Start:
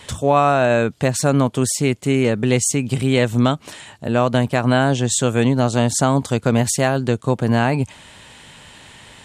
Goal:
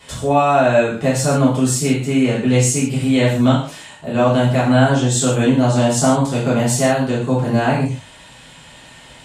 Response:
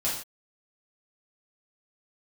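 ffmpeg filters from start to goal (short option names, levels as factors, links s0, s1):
-filter_complex "[0:a]bandreject=f=50:t=h:w=6,bandreject=f=100:t=h:w=6,bandreject=f=150:t=h:w=6[s0];[1:a]atrim=start_sample=2205[s1];[s0][s1]afir=irnorm=-1:irlink=0,volume=0.447"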